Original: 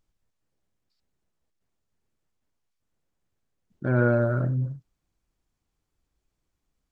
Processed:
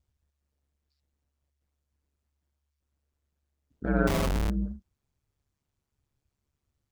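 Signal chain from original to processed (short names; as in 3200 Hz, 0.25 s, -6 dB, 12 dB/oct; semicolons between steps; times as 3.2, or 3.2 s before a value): ring modulator 71 Hz; 4.07–4.5 Schmitt trigger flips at -30.5 dBFS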